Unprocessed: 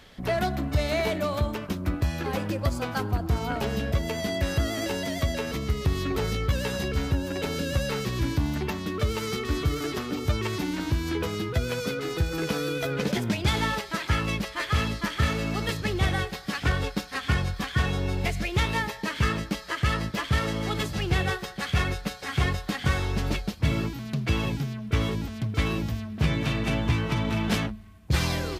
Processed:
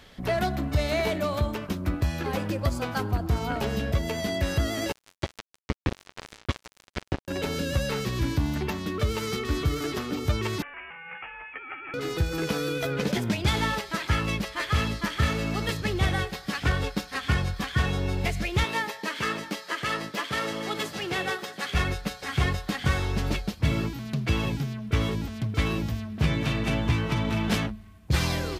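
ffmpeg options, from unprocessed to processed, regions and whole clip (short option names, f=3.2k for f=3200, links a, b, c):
-filter_complex "[0:a]asettb=1/sr,asplit=3[a][b][c];[a]atrim=end=4.924[d];[b]atrim=start=4.92:end=7.28,asetpts=PTS-STARTPTS,afade=t=in:d=0.004:c=qsin,afade=t=out:st=2.356:d=0.004:c=qsin,lowpass=4.8k,acrusher=bits=2:mix=0:aa=0.5[e];[c]atrim=start=7.276[f];[d][e]acrossfade=d=0.004:c1=hsin:c2=qsin[g];[g][f]acrossfade=d=0.004:c1=qsin:c2=hsin,asettb=1/sr,asplit=3[h][i][j];[h]atrim=end=10.624[k];[i]atrim=start=10.62:end=11.94,asetpts=PTS-STARTPTS,afade=t=in:d=0.004:c=qsin,afade=t=out:st=1.316:d=0.004:c=qsin,highpass=f=1.3k:w=0.5412,highpass=f=1.3k:w=1.3066,lowpass=f=3.2k:t=q:w=0.5098,lowpass=f=3.2k:t=q:w=0.6013,lowpass=f=3.2k:t=q:w=0.9,lowpass=f=3.2k:t=q:w=2.563,afreqshift=-3800[l];[j]atrim=start=11.936[m];[k][l]acrossfade=d=0.004:c1=hsin:c2=qsin[n];[n][m]acrossfade=d=0.004:c1=qsin:c2=hsin,asettb=1/sr,asplit=3[o][p][q];[o]atrim=end=18.644[r];[p]atrim=start=18.64:end=21.75,asetpts=PTS-STARTPTS,afade=t=in:d=0.004:c=qsin,afade=t=out:st=3.106:d=0.004:c=qsin,highpass=260,aecho=1:1:677:0.141,atrim=end_sample=137151[s];[q]atrim=start=21.746[t];[r][s]acrossfade=d=0.004:c1=hsin:c2=qsin[u];[u][t]acrossfade=d=0.004:c1=qsin:c2=hsin"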